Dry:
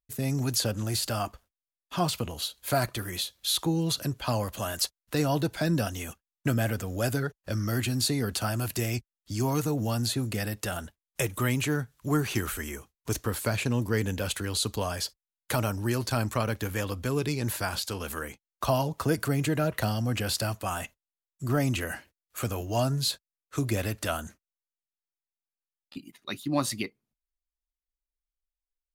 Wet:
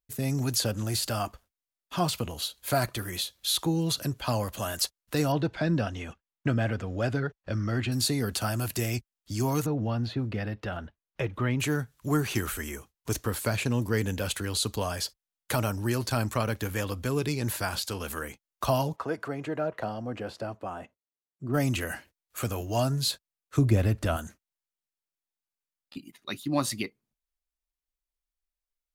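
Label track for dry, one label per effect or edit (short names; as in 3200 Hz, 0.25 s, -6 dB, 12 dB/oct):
5.320000	7.920000	LPF 3400 Hz
9.660000	11.600000	air absorption 300 m
18.950000	21.530000	band-pass 920 Hz -> 280 Hz, Q 0.79
23.570000	24.170000	tilt -2.5 dB/oct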